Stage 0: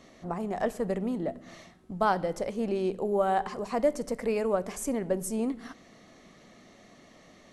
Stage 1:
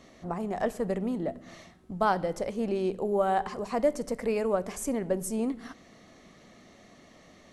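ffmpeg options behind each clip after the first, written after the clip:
-af "equalizer=f=72:w=1.5:g=4"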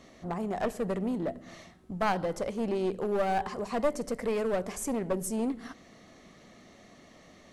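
-af "aeval=exprs='clip(val(0),-1,0.0422)':c=same"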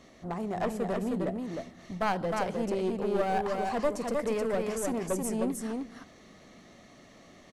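-af "aecho=1:1:310:0.668,volume=-1dB"

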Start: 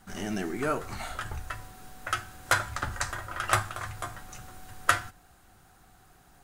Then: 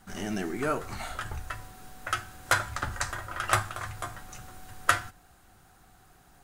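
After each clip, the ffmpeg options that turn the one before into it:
-af anull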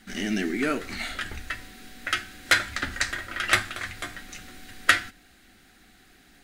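-af "equalizer=f=125:t=o:w=1:g=-9,equalizer=f=250:t=o:w=1:g=11,equalizer=f=1k:t=o:w=1:g=-10,equalizer=f=2k:t=o:w=1:g=11,equalizer=f=4k:t=o:w=1:g=8"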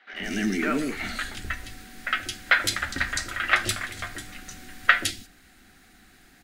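-filter_complex "[0:a]acrossover=split=470|3400[a][b][c];[a]adelay=130[d];[c]adelay=160[e];[d][b][e]amix=inputs=3:normalize=0,volume=2dB"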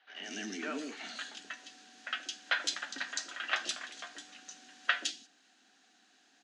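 -af "highpass=f=290:w=0.5412,highpass=f=290:w=1.3066,equalizer=f=360:t=q:w=4:g=-9,equalizer=f=540:t=q:w=4:g=-4,equalizer=f=1.3k:t=q:w=4:g=-6,equalizer=f=2.1k:t=q:w=4:g=-10,equalizer=f=3k:t=q:w=4:g=3,equalizer=f=6.4k:t=q:w=4:g=5,lowpass=f=6.8k:w=0.5412,lowpass=f=6.8k:w=1.3066,volume=-7dB"

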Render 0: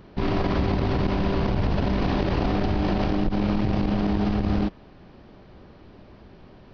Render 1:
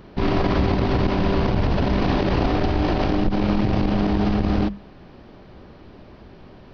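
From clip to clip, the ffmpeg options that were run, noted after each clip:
-af "bandreject=f=50:t=h:w=6,bandreject=f=100:t=h:w=6,bandreject=f=150:t=h:w=6,bandreject=f=200:t=h:w=6,volume=4dB"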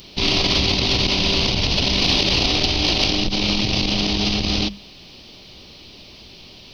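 -af "aexciter=amount=9.9:drive=7.6:freq=2.5k,volume=-3dB"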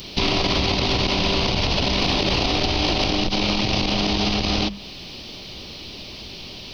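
-filter_complex "[0:a]acrossover=split=530|1800[a][b][c];[a]acompressor=threshold=-28dB:ratio=4[d];[b]acompressor=threshold=-31dB:ratio=4[e];[c]acompressor=threshold=-32dB:ratio=4[f];[d][e][f]amix=inputs=3:normalize=0,volume=6dB"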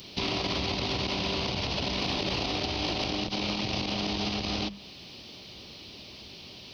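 -af "highpass=65,volume=-9dB"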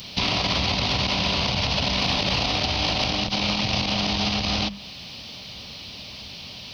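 -af "equalizer=f=360:t=o:w=0.63:g=-12.5,volume=8dB"

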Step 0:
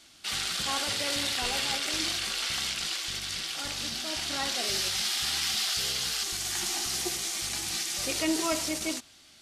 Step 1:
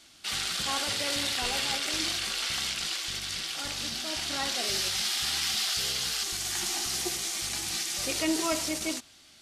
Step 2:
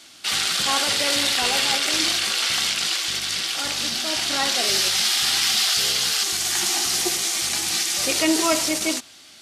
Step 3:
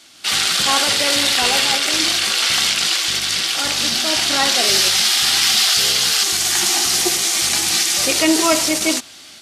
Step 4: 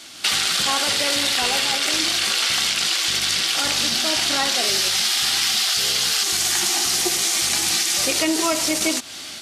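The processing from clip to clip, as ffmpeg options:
-af anull
-af "highpass=f=200:p=1,volume=9dB"
-af "dynaudnorm=f=140:g=3:m=7dB"
-af "acompressor=threshold=-24dB:ratio=6,volume=6dB"

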